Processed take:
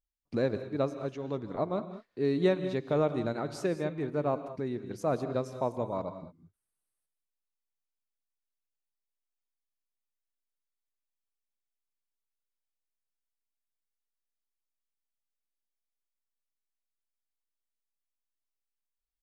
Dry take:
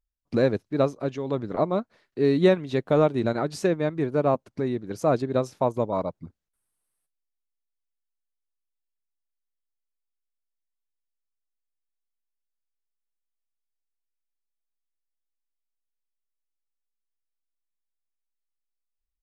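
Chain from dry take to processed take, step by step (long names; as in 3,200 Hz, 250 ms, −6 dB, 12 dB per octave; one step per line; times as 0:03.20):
reverb whose tail is shaped and stops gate 230 ms rising, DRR 10.5 dB
level −7.5 dB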